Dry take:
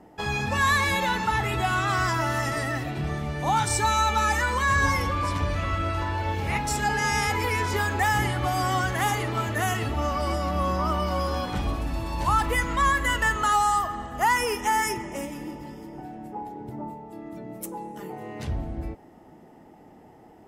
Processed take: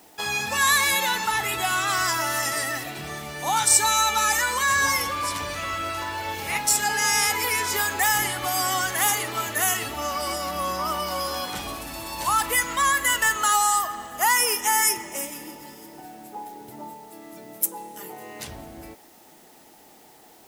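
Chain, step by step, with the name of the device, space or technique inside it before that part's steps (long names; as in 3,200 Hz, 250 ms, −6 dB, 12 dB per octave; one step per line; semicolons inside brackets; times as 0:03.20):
turntable without a phono preamp (RIAA equalisation recording; white noise bed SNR 30 dB)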